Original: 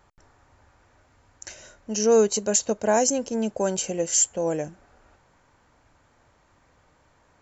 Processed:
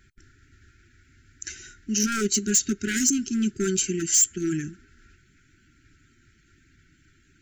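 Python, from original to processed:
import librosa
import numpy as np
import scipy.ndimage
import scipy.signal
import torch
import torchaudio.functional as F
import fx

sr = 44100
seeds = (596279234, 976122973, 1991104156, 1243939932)

y = fx.spec_quant(x, sr, step_db=15)
y = np.clip(y, -10.0 ** (-19.0 / 20.0), 10.0 ** (-19.0 / 20.0))
y = fx.brickwall_bandstop(y, sr, low_hz=410.0, high_hz=1300.0)
y = y * librosa.db_to_amplitude(4.5)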